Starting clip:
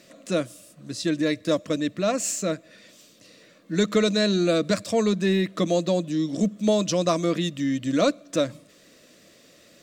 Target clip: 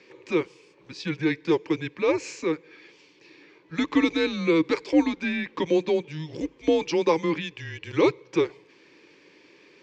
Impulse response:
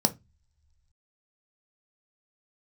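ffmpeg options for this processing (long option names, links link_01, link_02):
-af "afreqshift=-160,highpass=270,equalizer=frequency=310:width_type=q:width=4:gain=8,equalizer=frequency=610:width_type=q:width=4:gain=6,equalizer=frequency=920:width_type=q:width=4:gain=3,equalizer=frequency=1400:width_type=q:width=4:gain=-5,equalizer=frequency=2300:width_type=q:width=4:gain=8,equalizer=frequency=3700:width_type=q:width=4:gain=-7,lowpass=frequency=4700:width=0.5412,lowpass=frequency=4700:width=1.3066"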